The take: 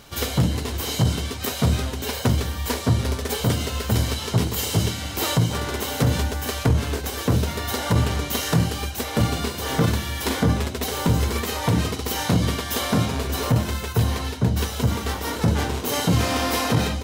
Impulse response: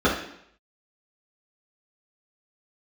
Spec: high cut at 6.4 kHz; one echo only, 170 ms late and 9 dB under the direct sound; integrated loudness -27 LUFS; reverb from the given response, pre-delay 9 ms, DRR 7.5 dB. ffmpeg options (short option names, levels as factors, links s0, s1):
-filter_complex "[0:a]lowpass=6400,aecho=1:1:170:0.355,asplit=2[s0][s1];[1:a]atrim=start_sample=2205,adelay=9[s2];[s1][s2]afir=irnorm=-1:irlink=0,volume=0.0473[s3];[s0][s3]amix=inputs=2:normalize=0,volume=0.501"